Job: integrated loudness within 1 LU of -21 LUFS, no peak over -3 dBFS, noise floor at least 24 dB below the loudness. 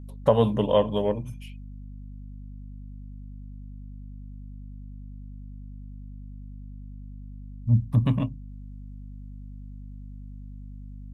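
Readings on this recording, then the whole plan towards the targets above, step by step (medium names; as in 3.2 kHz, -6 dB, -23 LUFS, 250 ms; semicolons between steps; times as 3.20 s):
hum 50 Hz; highest harmonic 250 Hz; hum level -38 dBFS; loudness -24.5 LUFS; peak level -7.5 dBFS; loudness target -21.0 LUFS
-> de-hum 50 Hz, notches 5; trim +3.5 dB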